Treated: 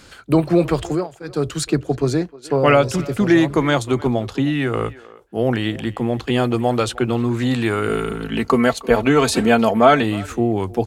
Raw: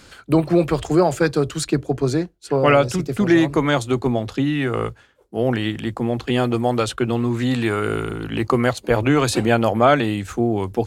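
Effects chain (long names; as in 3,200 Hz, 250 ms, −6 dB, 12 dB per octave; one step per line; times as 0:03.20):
0:00.84–0:01.47: duck −20 dB, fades 0.24 s
0:07.88–0:10.03: comb filter 4.5 ms, depth 60%
far-end echo of a speakerphone 310 ms, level −19 dB
level +1 dB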